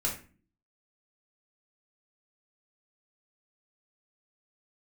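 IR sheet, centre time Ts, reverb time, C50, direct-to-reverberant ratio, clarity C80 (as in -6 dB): 25 ms, 0.35 s, 7.0 dB, -4.5 dB, 12.5 dB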